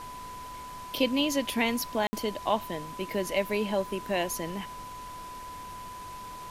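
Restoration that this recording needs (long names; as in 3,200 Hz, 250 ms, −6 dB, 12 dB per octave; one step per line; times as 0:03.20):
notch filter 1,000 Hz, Q 30
ambience match 0:02.07–0:02.13
noise reduction from a noise print 30 dB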